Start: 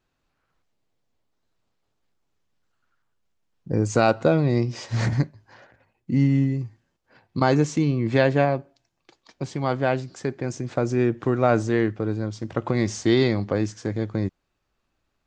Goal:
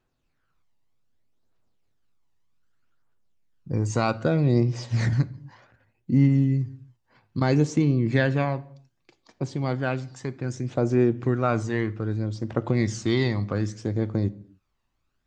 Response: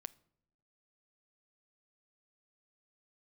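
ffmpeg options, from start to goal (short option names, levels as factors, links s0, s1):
-filter_complex "[0:a]aphaser=in_gain=1:out_gain=1:delay=1.1:decay=0.44:speed=0.64:type=triangular[s0];[1:a]atrim=start_sample=2205,afade=t=out:st=0.31:d=0.01,atrim=end_sample=14112,asetrate=37485,aresample=44100[s1];[s0][s1]afir=irnorm=-1:irlink=0"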